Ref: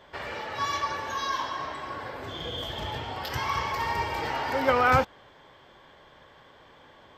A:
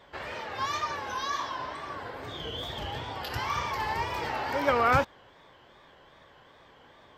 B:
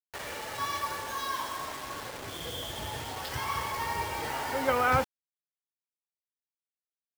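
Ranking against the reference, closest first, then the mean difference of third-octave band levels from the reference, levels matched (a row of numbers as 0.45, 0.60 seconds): A, B; 1.5, 8.0 decibels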